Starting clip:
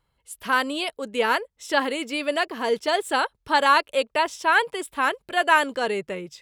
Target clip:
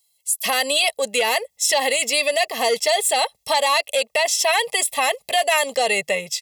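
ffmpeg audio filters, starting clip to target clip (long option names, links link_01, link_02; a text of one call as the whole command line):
ffmpeg -i in.wav -filter_complex "[0:a]acrossover=split=5400[link_01][link_02];[link_01]agate=range=-21dB:threshold=-46dB:ratio=16:detection=peak[link_03];[link_02]acontrast=89[link_04];[link_03][link_04]amix=inputs=2:normalize=0,asuperstop=centerf=1400:order=4:qfactor=2.2,aecho=1:1:1.5:0.91,asplit=2[link_05][link_06];[link_06]acompressor=threshold=-27dB:ratio=6,volume=3dB[link_07];[link_05][link_07]amix=inputs=2:normalize=0,asoftclip=type=tanh:threshold=-7.5dB,highpass=frequency=890:poles=1,alimiter=level_in=14.5dB:limit=-1dB:release=50:level=0:latency=1,volume=-8.5dB" out.wav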